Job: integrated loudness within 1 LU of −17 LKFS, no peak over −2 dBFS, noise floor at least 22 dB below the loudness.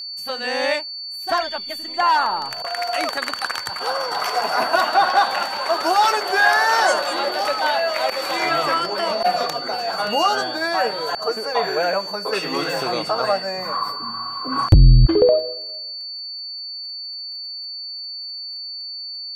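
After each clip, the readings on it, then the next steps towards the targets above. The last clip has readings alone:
crackle rate 23 per second; interfering tone 4,500 Hz; level of the tone −29 dBFS; integrated loudness −21.0 LKFS; sample peak −2.5 dBFS; target loudness −17.0 LKFS
→ click removal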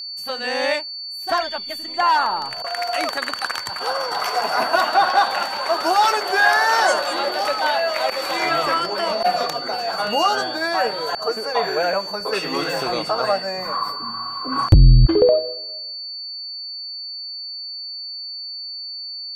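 crackle rate 0.21 per second; interfering tone 4,500 Hz; level of the tone −29 dBFS
→ notch filter 4,500 Hz, Q 30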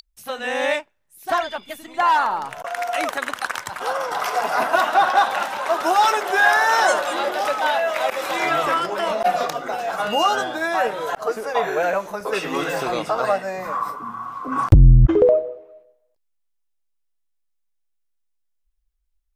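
interfering tone none found; integrated loudness −20.5 LKFS; sample peak −3.0 dBFS; target loudness −17.0 LKFS
→ level +3.5 dB
brickwall limiter −2 dBFS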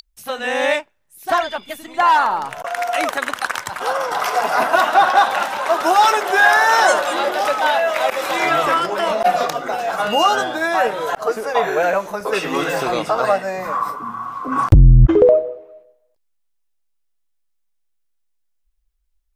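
integrated loudness −17.0 LKFS; sample peak −2.0 dBFS; background noise floor −67 dBFS

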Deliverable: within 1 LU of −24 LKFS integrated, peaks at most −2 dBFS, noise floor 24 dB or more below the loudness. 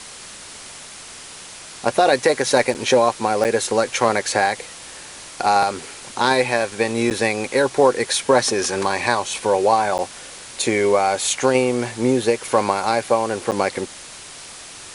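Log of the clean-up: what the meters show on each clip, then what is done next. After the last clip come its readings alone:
number of dropouts 5; longest dropout 8.8 ms; background noise floor −38 dBFS; target noise floor −44 dBFS; integrated loudness −19.5 LKFS; sample peak −2.5 dBFS; target loudness −24.0 LKFS
→ repair the gap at 0:02.74/0:03.44/0:07.10/0:09.98/0:13.51, 8.8 ms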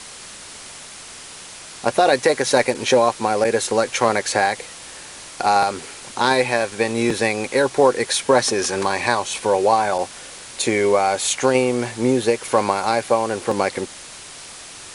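number of dropouts 0; background noise floor −38 dBFS; target noise floor −44 dBFS
→ broadband denoise 6 dB, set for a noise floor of −38 dBFS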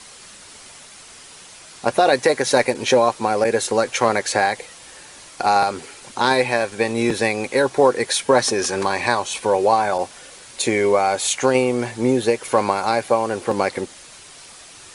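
background noise floor −43 dBFS; target noise floor −44 dBFS
→ broadband denoise 6 dB, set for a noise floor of −43 dBFS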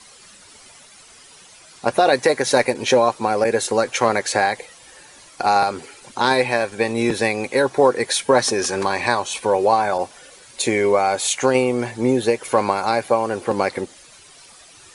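background noise floor −47 dBFS; integrated loudness −19.5 LKFS; sample peak −2.5 dBFS; target loudness −24.0 LKFS
→ level −4.5 dB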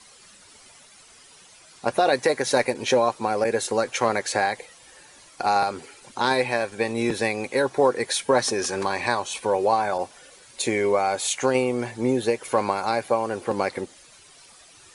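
integrated loudness −24.0 LKFS; sample peak −7.0 dBFS; background noise floor −51 dBFS

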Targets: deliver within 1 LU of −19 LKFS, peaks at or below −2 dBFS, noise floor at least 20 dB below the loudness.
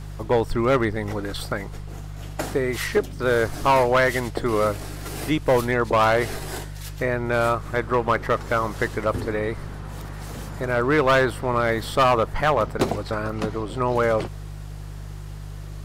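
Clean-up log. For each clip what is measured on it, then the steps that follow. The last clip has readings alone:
share of clipped samples 0.9%; peaks flattened at −12.5 dBFS; mains hum 50 Hz; hum harmonics up to 150 Hz; level of the hum −33 dBFS; integrated loudness −23.0 LKFS; sample peak −12.5 dBFS; target loudness −19.0 LKFS
→ clipped peaks rebuilt −12.5 dBFS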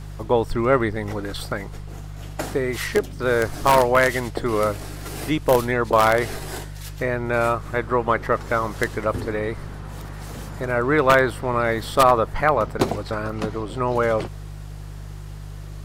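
share of clipped samples 0.0%; mains hum 50 Hz; hum harmonics up to 150 Hz; level of the hum −33 dBFS
→ hum removal 50 Hz, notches 3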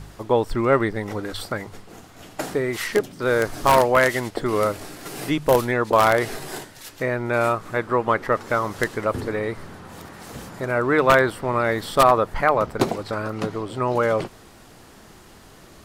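mains hum none found; integrated loudness −21.5 LKFS; sample peak −3.0 dBFS; target loudness −19.0 LKFS
→ level +2.5 dB
brickwall limiter −2 dBFS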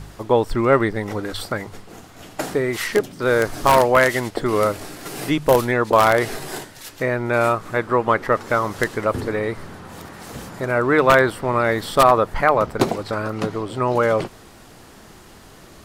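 integrated loudness −19.5 LKFS; sample peak −2.0 dBFS; background noise floor −45 dBFS

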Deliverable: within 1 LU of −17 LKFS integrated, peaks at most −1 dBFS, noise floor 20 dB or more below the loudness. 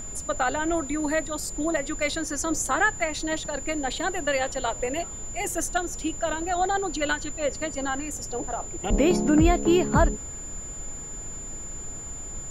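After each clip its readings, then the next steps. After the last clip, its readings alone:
interfering tone 7,100 Hz; level of the tone −36 dBFS; background noise floor −37 dBFS; target noise floor −47 dBFS; integrated loudness −26.5 LKFS; sample peak −8.5 dBFS; target loudness −17.0 LKFS
→ notch filter 7,100 Hz, Q 30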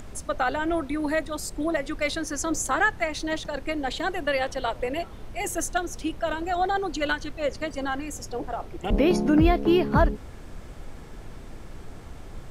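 interfering tone none found; background noise floor −42 dBFS; target noise floor −47 dBFS
→ noise reduction from a noise print 6 dB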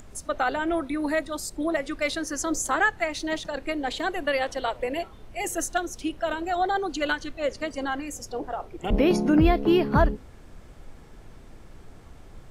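background noise floor −47 dBFS; integrated loudness −26.5 LKFS; sample peak −9.0 dBFS; target loudness −17.0 LKFS
→ level +9.5 dB
brickwall limiter −1 dBFS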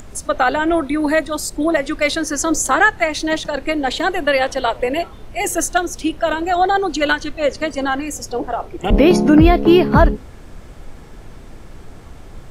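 integrated loudness −17.0 LKFS; sample peak −1.0 dBFS; background noise floor −38 dBFS

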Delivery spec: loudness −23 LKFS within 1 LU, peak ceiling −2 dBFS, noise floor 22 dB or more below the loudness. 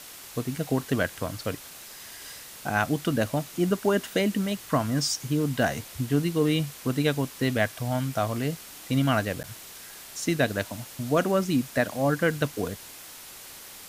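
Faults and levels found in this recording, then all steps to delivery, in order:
number of dropouts 1; longest dropout 9.6 ms; background noise floor −45 dBFS; target noise floor −49 dBFS; integrated loudness −27.0 LKFS; sample peak −8.0 dBFS; target loudness −23.0 LKFS
→ repair the gap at 0:09.43, 9.6 ms
noise reduction from a noise print 6 dB
level +4 dB

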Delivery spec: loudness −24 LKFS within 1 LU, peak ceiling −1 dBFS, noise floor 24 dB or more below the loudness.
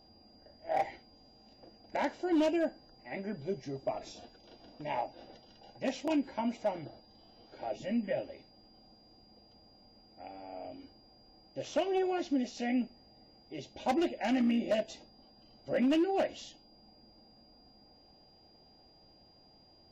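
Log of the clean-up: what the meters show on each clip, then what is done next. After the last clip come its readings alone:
share of clipped samples 0.6%; peaks flattened at −23.5 dBFS; interfering tone 4,800 Hz; level of the tone −62 dBFS; integrated loudness −34.0 LKFS; sample peak −23.5 dBFS; target loudness −24.0 LKFS
→ clipped peaks rebuilt −23.5 dBFS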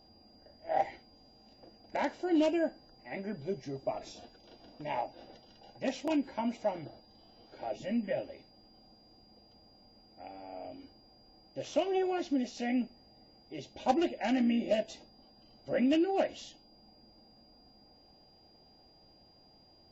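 share of clipped samples 0.0%; interfering tone 4,800 Hz; level of the tone −62 dBFS
→ notch filter 4,800 Hz, Q 30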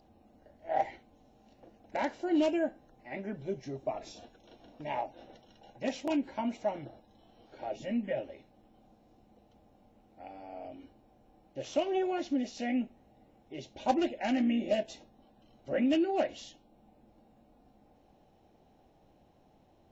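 interfering tone none found; integrated loudness −33.5 LKFS; sample peak −14.5 dBFS; target loudness −24.0 LKFS
→ level +9.5 dB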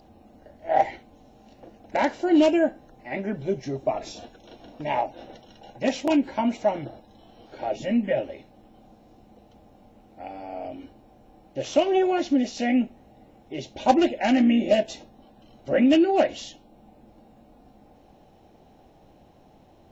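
integrated loudness −24.0 LKFS; sample peak −5.0 dBFS; background noise floor −55 dBFS

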